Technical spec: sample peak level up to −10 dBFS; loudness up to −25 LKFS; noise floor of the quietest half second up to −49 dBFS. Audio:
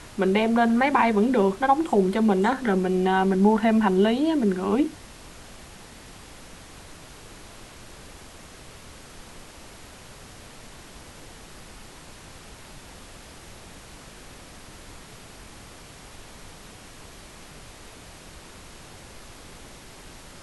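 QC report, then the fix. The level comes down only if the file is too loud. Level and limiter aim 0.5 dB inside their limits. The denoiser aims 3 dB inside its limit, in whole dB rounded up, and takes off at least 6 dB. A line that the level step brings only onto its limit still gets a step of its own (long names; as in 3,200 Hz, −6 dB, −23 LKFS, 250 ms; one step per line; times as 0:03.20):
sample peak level −7.0 dBFS: out of spec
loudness −21.5 LKFS: out of spec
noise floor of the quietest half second −45 dBFS: out of spec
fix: broadband denoise 6 dB, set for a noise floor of −45 dBFS
level −4 dB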